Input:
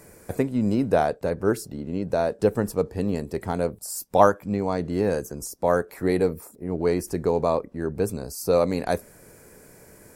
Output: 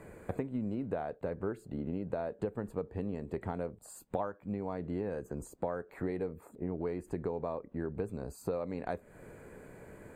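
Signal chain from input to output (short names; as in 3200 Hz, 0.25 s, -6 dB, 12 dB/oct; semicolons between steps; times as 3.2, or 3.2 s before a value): compressor 10:1, threshold -32 dBFS, peak gain reduction 21.5 dB; running mean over 8 samples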